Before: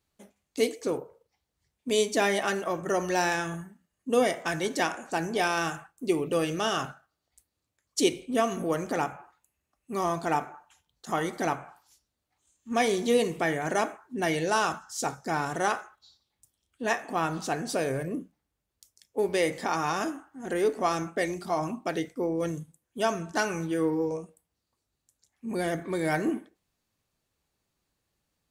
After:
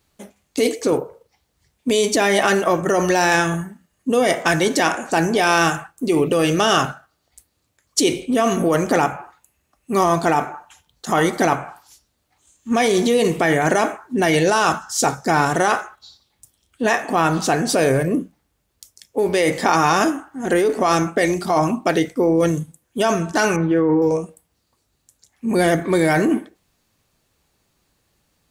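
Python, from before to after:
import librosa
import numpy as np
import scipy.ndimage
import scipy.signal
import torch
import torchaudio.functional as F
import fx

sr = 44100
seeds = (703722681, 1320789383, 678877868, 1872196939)

p1 = fx.lowpass(x, sr, hz=1900.0, slope=12, at=(23.56, 24.02))
p2 = fx.over_compress(p1, sr, threshold_db=-28.0, ratio=-0.5)
p3 = p1 + (p2 * 10.0 ** (2.5 / 20.0))
y = p3 * 10.0 ** (4.5 / 20.0)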